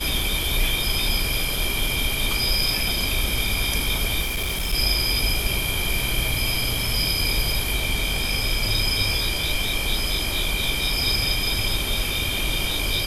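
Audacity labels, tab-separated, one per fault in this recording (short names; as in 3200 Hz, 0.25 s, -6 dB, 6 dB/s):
4.210000	4.740000	clipped -22 dBFS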